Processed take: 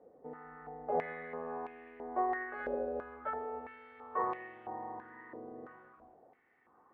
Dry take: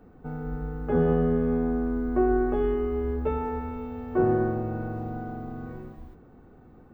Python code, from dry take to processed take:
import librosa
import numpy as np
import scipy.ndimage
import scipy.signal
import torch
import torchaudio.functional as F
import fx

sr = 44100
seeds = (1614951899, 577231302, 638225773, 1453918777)

y = fx.air_absorb(x, sr, metres=330.0)
y = fx.formant_shift(y, sr, semitones=4)
y = fx.filter_held_bandpass(y, sr, hz=3.0, low_hz=550.0, high_hz=2600.0)
y = y * 10.0 ** (2.5 / 20.0)